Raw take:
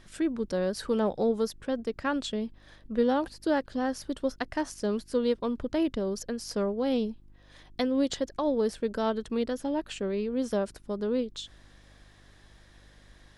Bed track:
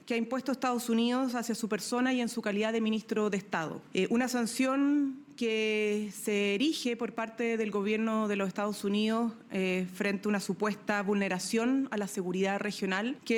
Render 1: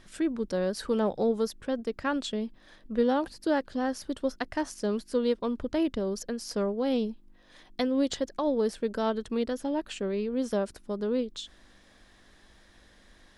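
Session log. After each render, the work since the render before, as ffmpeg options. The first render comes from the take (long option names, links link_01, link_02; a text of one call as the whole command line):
ffmpeg -i in.wav -af "bandreject=frequency=50:width_type=h:width=4,bandreject=frequency=100:width_type=h:width=4,bandreject=frequency=150:width_type=h:width=4" out.wav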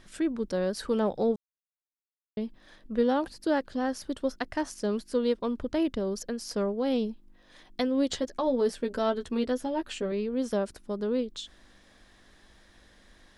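ffmpeg -i in.wav -filter_complex "[0:a]asettb=1/sr,asplit=3[link_01][link_02][link_03];[link_01]atrim=end=8.084[link_04];[link_02]atrim=start=8.08:end=10.12,asetpts=PTS-STARTPTS,afade=type=in:duration=0.004:curve=qsin,afade=type=out:start_time=2.036:duration=0.004:curve=qsin,asplit=2[link_05][link_06];[link_06]adelay=12,volume=-5.5dB[link_07];[link_05][link_07]amix=inputs=2:normalize=0,atrim=end_sample=89964[link_08];[link_03]atrim=start=10.116[link_09];[link_04][link_08]acrossfade=duration=0.004:curve1=hsin:curve2=qsin[link_10];[link_10][link_09]acrossfade=duration=0.004:curve1=qsin:curve2=hsin,asplit=3[link_11][link_12][link_13];[link_11]atrim=end=1.36,asetpts=PTS-STARTPTS,afade=type=out:start_time=1.356:duration=0.004:curve=hsin[link_14];[link_12]atrim=start=1.36:end=2.37,asetpts=PTS-STARTPTS,volume=0[link_15];[link_13]atrim=start=2.37,asetpts=PTS-STARTPTS,afade=type=in:duration=0.004:curve=hsin[link_16];[link_14][link_15][link_16]concat=n=3:v=0:a=1" out.wav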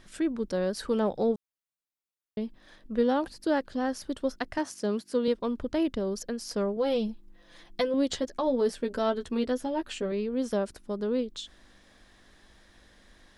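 ffmpeg -i in.wav -filter_complex "[0:a]asettb=1/sr,asplit=3[link_01][link_02][link_03];[link_01]atrim=end=4.584[link_04];[link_02]atrim=start=4.58:end=5.28,asetpts=PTS-STARTPTS,afade=type=in:duration=0.004:curve=qsin,afade=type=out:start_time=0.696:duration=0.004:curve=qsin,highpass=frequency=90:width=0.5412,highpass=frequency=90:width=1.3066[link_05];[link_03]atrim=start=5.276[link_06];[link_04][link_05]acrossfade=duration=0.004:curve1=hsin:curve2=qsin[link_07];[link_07][link_06]acrossfade=duration=0.004:curve1=qsin:curve2=hsin,asettb=1/sr,asplit=3[link_08][link_09][link_10];[link_08]atrim=end=6.764[link_11];[link_09]atrim=start=6.76:end=7.94,asetpts=PTS-STARTPTS,afade=type=in:duration=0.004:curve=qsin,afade=type=out:start_time=1.176:duration=0.004:curve=qsin,aecho=1:1:5.9:0.65,atrim=end_sample=52038[link_12];[link_10]atrim=start=7.936[link_13];[link_11][link_12]acrossfade=duration=0.004:curve1=hsin:curve2=qsin[link_14];[link_14][link_13]acrossfade=duration=0.004:curve1=qsin:curve2=hsin" out.wav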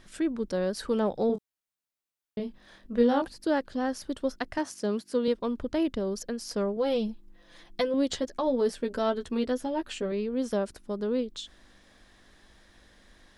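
ffmpeg -i in.wav -filter_complex "[0:a]asettb=1/sr,asplit=3[link_01][link_02][link_03];[link_01]atrim=end=1.274[link_04];[link_02]atrim=start=1.27:end=3.22,asetpts=PTS-STARTPTS,afade=type=in:duration=0.004:curve=qsin,afade=type=out:start_time=1.946:duration=0.004:curve=qsin,asplit=2[link_05][link_06];[link_06]adelay=25,volume=-4.5dB[link_07];[link_05][link_07]amix=inputs=2:normalize=0,atrim=end_sample=85995[link_08];[link_03]atrim=start=3.216[link_09];[link_04][link_08]acrossfade=duration=0.004:curve1=hsin:curve2=qsin[link_10];[link_10][link_09]acrossfade=duration=0.004:curve1=qsin:curve2=hsin" out.wav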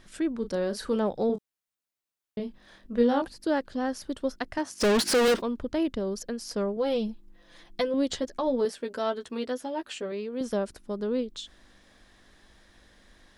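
ffmpeg -i in.wav -filter_complex "[0:a]asettb=1/sr,asplit=3[link_01][link_02][link_03];[link_01]atrim=end=0.394[link_04];[link_02]atrim=start=0.39:end=0.96,asetpts=PTS-STARTPTS,afade=type=in:duration=0.004:curve=qsin,afade=type=out:start_time=0.566:duration=0.004:curve=qsin,asplit=2[link_05][link_06];[link_06]adelay=35,volume=-10dB[link_07];[link_05][link_07]amix=inputs=2:normalize=0,atrim=end_sample=25137[link_08];[link_03]atrim=start=0.956[link_09];[link_04][link_08]acrossfade=duration=0.004:curve1=hsin:curve2=qsin[link_10];[link_10][link_09]acrossfade=duration=0.004:curve1=qsin:curve2=hsin,asplit=3[link_11][link_12][link_13];[link_11]afade=type=out:start_time=4.8:duration=0.02[link_14];[link_12]asplit=2[link_15][link_16];[link_16]highpass=frequency=720:poles=1,volume=39dB,asoftclip=type=tanh:threshold=-15.5dB[link_17];[link_15][link_17]amix=inputs=2:normalize=0,lowpass=frequency=6200:poles=1,volume=-6dB,afade=type=in:start_time=4.8:duration=0.02,afade=type=out:start_time=5.4:duration=0.02[link_18];[link_13]afade=type=in:start_time=5.4:duration=0.02[link_19];[link_14][link_18][link_19]amix=inputs=3:normalize=0,asettb=1/sr,asplit=3[link_20][link_21][link_22];[link_20]atrim=end=8.654[link_23];[link_21]atrim=start=8.65:end=10.41,asetpts=PTS-STARTPTS,afade=type=in:duration=0.004:curve=qsin,afade=type=out:start_time=1.756:duration=0.004:curve=qsin,highpass=frequency=370:poles=1[link_24];[link_22]atrim=start=10.406[link_25];[link_23][link_24]acrossfade=duration=0.004:curve1=hsin:curve2=qsin[link_26];[link_26][link_25]acrossfade=duration=0.004:curve1=qsin:curve2=hsin" out.wav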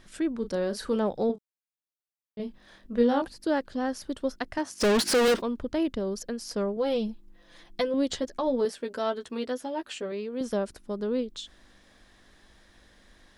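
ffmpeg -i in.wav -filter_complex "[0:a]asplit=3[link_01][link_02][link_03];[link_01]atrim=end=1.43,asetpts=PTS-STARTPTS,afade=type=out:start_time=1.31:duration=0.12:curve=exp:silence=0.316228[link_04];[link_02]atrim=start=1.43:end=2.28,asetpts=PTS-STARTPTS,volume=-10dB[link_05];[link_03]atrim=start=2.28,asetpts=PTS-STARTPTS,afade=type=in:duration=0.12:curve=exp:silence=0.316228[link_06];[link_04][link_05][link_06]concat=n=3:v=0:a=1" out.wav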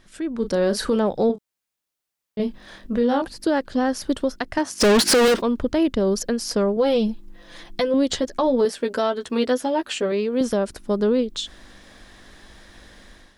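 ffmpeg -i in.wav -af "alimiter=limit=-22.5dB:level=0:latency=1:release=272,dynaudnorm=framelen=140:gausssize=5:maxgain=11dB" out.wav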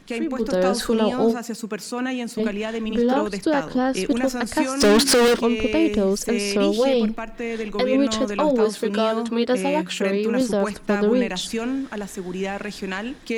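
ffmpeg -i in.wav -i bed.wav -filter_complex "[1:a]volume=3dB[link_01];[0:a][link_01]amix=inputs=2:normalize=0" out.wav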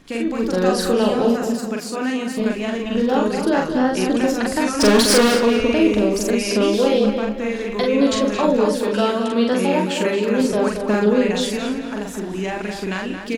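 ffmpeg -i in.wav -filter_complex "[0:a]asplit=2[link_01][link_02];[link_02]adelay=43,volume=-2.5dB[link_03];[link_01][link_03]amix=inputs=2:normalize=0,asplit=2[link_04][link_05];[link_05]adelay=222,lowpass=frequency=3800:poles=1,volume=-7dB,asplit=2[link_06][link_07];[link_07]adelay=222,lowpass=frequency=3800:poles=1,volume=0.41,asplit=2[link_08][link_09];[link_09]adelay=222,lowpass=frequency=3800:poles=1,volume=0.41,asplit=2[link_10][link_11];[link_11]adelay=222,lowpass=frequency=3800:poles=1,volume=0.41,asplit=2[link_12][link_13];[link_13]adelay=222,lowpass=frequency=3800:poles=1,volume=0.41[link_14];[link_04][link_06][link_08][link_10][link_12][link_14]amix=inputs=6:normalize=0" out.wav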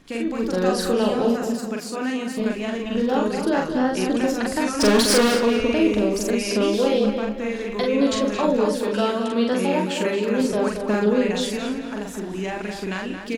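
ffmpeg -i in.wav -af "volume=-3dB" out.wav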